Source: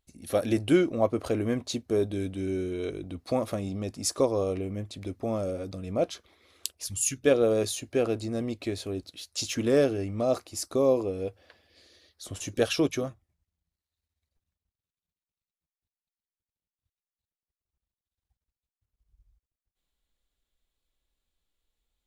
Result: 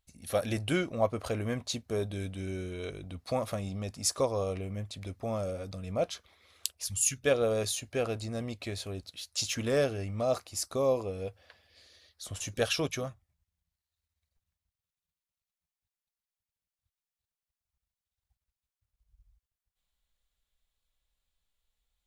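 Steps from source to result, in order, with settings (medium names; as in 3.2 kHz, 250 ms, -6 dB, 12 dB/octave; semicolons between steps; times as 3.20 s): peaking EQ 320 Hz -11 dB 1 oct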